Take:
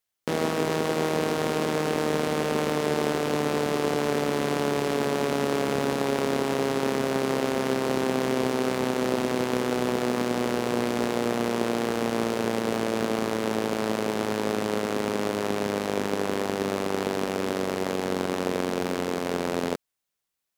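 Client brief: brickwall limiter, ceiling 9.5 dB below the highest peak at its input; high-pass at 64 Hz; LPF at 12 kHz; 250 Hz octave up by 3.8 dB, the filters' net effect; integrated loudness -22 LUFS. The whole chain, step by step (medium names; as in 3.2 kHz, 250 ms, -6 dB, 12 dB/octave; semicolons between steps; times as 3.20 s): high-pass 64 Hz; low-pass 12 kHz; peaking EQ 250 Hz +4.5 dB; trim +7.5 dB; peak limiter -11 dBFS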